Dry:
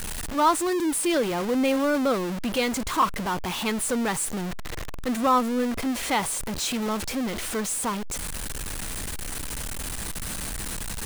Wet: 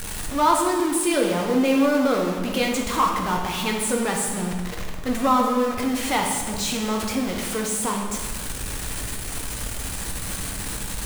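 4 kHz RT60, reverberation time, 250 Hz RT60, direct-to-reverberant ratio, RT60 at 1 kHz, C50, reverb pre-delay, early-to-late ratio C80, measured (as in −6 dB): 1.2 s, 1.4 s, 1.6 s, 0.5 dB, 1.4 s, 3.5 dB, 3 ms, 5.5 dB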